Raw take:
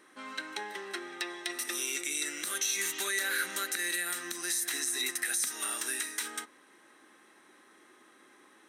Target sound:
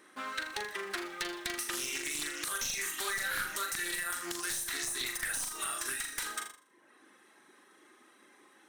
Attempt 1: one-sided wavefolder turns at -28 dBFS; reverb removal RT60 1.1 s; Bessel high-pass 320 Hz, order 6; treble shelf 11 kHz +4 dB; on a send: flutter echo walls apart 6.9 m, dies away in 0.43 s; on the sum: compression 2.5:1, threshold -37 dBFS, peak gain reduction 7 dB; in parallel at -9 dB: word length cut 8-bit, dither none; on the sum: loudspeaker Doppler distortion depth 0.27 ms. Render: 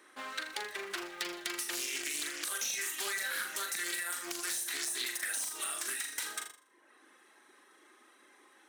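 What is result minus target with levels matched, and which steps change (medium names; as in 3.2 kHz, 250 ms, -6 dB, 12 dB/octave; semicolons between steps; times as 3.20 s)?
1 kHz band -3.0 dB; 250 Hz band -2.5 dB
add after compression: dynamic bell 1.2 kHz, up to +5 dB, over -59 dBFS, Q 1.8; remove: Bessel high-pass 320 Hz, order 6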